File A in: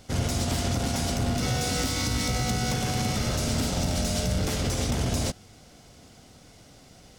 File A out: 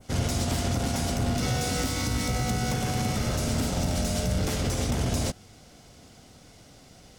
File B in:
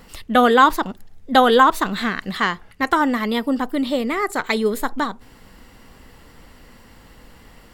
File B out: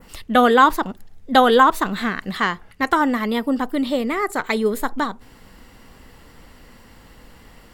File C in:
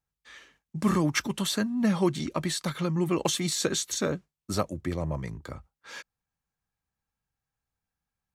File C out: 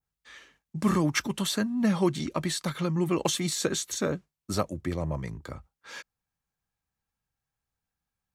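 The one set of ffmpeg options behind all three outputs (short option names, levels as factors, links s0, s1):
-af "adynamicequalizer=threshold=0.0141:dfrequency=4300:dqfactor=0.83:tfrequency=4300:tqfactor=0.83:attack=5:release=100:ratio=0.375:range=2.5:mode=cutabove:tftype=bell"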